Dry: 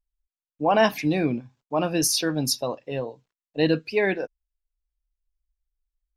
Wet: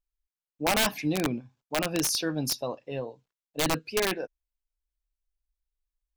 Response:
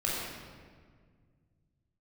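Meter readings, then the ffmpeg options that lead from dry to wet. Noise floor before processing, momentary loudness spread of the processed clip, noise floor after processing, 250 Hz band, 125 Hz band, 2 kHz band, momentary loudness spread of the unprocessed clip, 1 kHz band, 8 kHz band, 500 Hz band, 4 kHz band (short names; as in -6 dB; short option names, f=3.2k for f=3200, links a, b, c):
under -85 dBFS, 12 LU, under -85 dBFS, -5.5 dB, -5.0 dB, -3.0 dB, 12 LU, -6.0 dB, -2.5 dB, -7.0 dB, -1.5 dB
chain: -af "aeval=exprs='(mod(4.73*val(0)+1,2)-1)/4.73':c=same,bandreject=f=1.9k:w=28,volume=-4.5dB"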